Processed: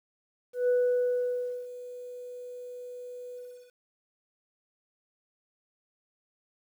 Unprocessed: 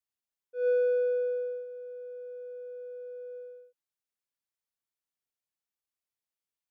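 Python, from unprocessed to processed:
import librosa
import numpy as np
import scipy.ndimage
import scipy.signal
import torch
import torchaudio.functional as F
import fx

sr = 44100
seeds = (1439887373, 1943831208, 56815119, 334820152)

y = fx.spec_gate(x, sr, threshold_db=-30, keep='strong')
y = fx.quant_dither(y, sr, seeds[0], bits=10, dither='none')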